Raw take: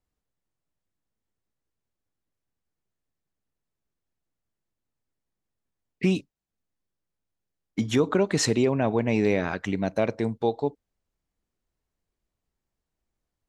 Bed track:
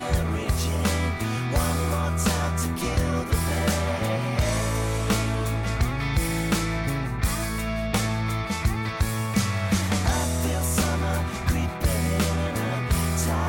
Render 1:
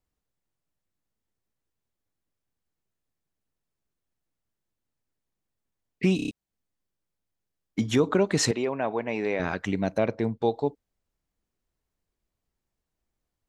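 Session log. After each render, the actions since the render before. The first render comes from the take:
0:06.16: stutter in place 0.03 s, 5 plays
0:08.51–0:09.40: resonant band-pass 1,200 Hz, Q 0.54
0:09.98–0:10.42: high-frequency loss of the air 110 metres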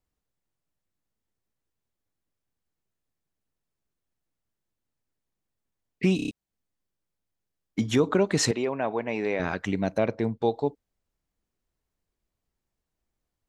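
no processing that can be heard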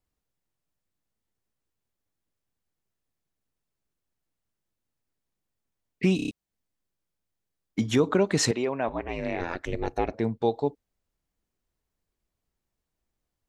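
0:08.88–0:10.14: ring modulation 170 Hz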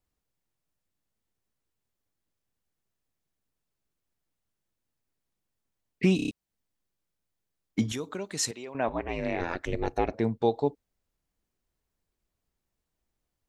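0:07.92–0:08.75: first-order pre-emphasis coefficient 0.8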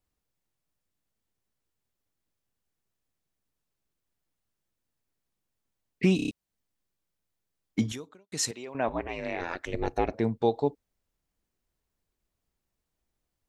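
0:07.86–0:08.32: fade out quadratic
0:09.07–0:09.74: low-shelf EQ 400 Hz −8 dB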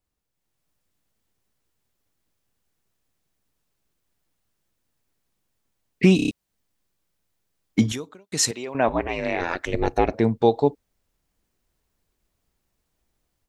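automatic gain control gain up to 8 dB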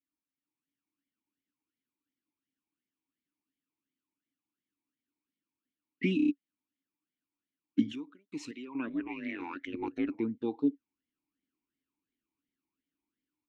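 formant filter swept between two vowels i-u 2.8 Hz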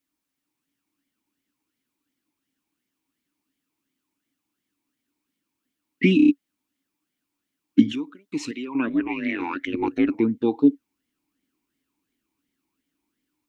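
level +11.5 dB

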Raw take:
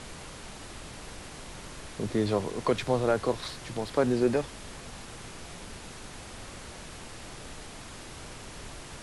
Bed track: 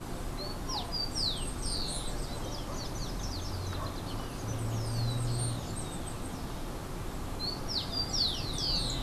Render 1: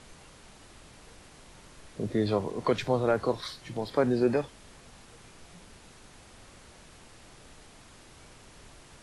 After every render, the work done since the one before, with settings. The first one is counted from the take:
noise reduction from a noise print 9 dB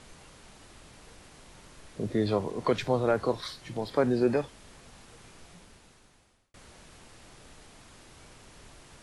0:05.40–0:06.54: fade out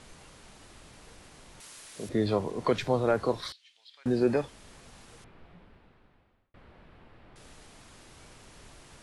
0:01.60–0:02.09: spectral tilt +3.5 dB per octave
0:03.52–0:04.06: four-pole ladder band-pass 3,700 Hz, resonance 45%
0:05.24–0:07.36: high-frequency loss of the air 440 metres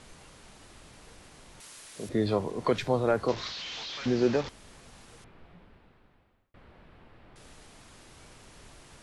0:03.28–0:04.49: linear delta modulator 32 kbit/s, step −32.5 dBFS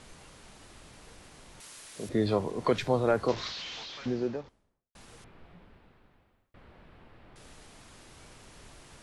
0:03.48–0:04.95: fade out and dull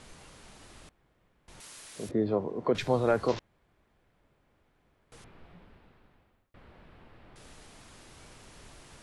0:00.89–0:01.48: fill with room tone
0:02.11–0:02.75: resonant band-pass 350 Hz, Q 0.51
0:03.39–0:05.12: fill with room tone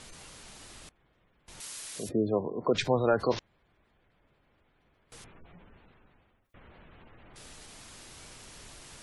high-shelf EQ 2,500 Hz +8 dB
gate on every frequency bin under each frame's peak −25 dB strong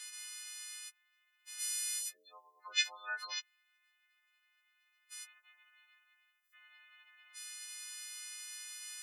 every partial snapped to a pitch grid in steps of 3 semitones
four-pole ladder high-pass 1,400 Hz, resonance 30%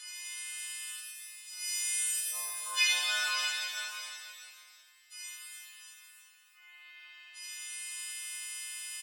single-tap delay 639 ms −11 dB
reverb with rising layers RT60 2.1 s, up +7 semitones, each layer −8 dB, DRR −7.5 dB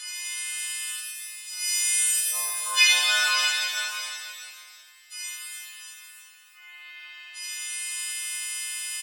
level +9 dB

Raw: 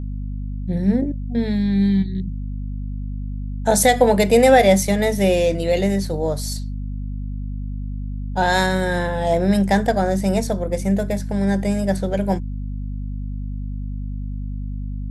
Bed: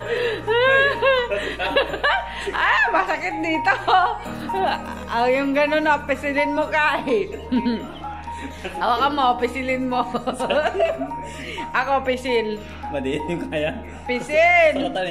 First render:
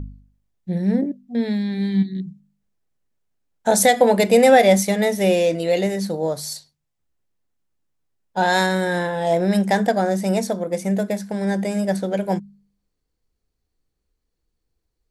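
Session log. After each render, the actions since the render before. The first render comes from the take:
hum removal 50 Hz, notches 5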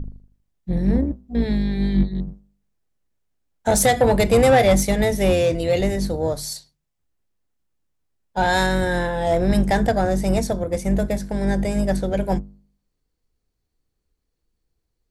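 sub-octave generator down 2 octaves, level −1 dB
soft clipping −8 dBFS, distortion −18 dB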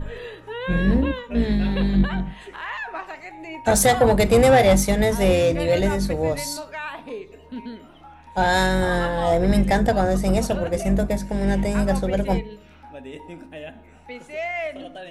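mix in bed −13.5 dB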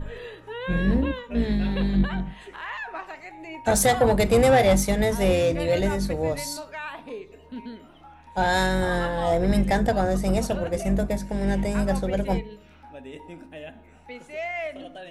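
level −3 dB

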